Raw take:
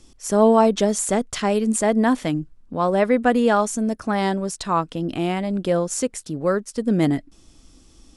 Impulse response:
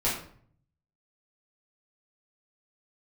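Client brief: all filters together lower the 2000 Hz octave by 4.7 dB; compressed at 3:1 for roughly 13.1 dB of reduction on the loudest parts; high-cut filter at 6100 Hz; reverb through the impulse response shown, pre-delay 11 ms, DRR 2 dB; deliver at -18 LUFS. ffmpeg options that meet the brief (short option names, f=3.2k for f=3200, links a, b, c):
-filter_complex "[0:a]lowpass=6.1k,equalizer=f=2k:t=o:g=-6,acompressor=threshold=-29dB:ratio=3,asplit=2[a][b];[1:a]atrim=start_sample=2205,adelay=11[c];[b][c]afir=irnorm=-1:irlink=0,volume=-12dB[d];[a][d]amix=inputs=2:normalize=0,volume=9.5dB"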